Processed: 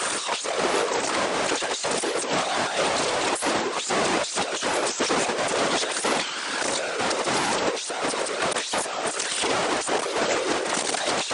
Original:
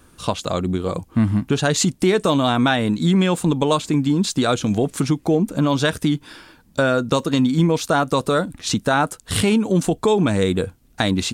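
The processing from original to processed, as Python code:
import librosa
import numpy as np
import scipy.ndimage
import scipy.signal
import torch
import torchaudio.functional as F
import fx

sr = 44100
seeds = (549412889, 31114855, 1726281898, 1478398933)

y = np.sign(x) * np.sqrt(np.mean(np.square(x)))
y = scipy.signal.sosfilt(scipy.signal.butter(4, 390.0, 'highpass', fs=sr, output='sos'), y)
y = fx.over_compress(y, sr, threshold_db=-24.0, ratio=-0.5)
y = fx.whisperise(y, sr, seeds[0])
y = fx.brickwall_lowpass(y, sr, high_hz=9700.0)
y = fx.record_warp(y, sr, rpm=45.0, depth_cents=250.0)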